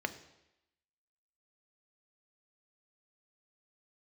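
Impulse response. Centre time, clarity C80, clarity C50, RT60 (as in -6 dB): 6 ms, 16.5 dB, 14.0 dB, 0.90 s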